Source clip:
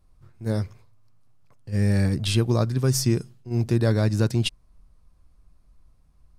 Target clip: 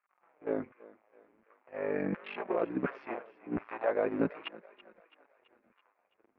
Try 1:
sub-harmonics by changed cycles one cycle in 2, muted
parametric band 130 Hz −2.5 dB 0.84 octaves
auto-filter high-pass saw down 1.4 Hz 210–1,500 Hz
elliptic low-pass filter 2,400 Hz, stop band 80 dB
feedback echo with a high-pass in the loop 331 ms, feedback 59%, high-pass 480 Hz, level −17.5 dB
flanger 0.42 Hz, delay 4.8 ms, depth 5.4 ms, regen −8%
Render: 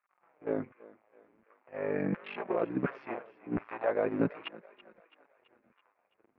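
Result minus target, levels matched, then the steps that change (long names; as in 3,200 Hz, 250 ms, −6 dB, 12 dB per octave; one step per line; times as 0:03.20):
125 Hz band +3.5 dB
change: parametric band 130 Hz −10 dB 0.84 octaves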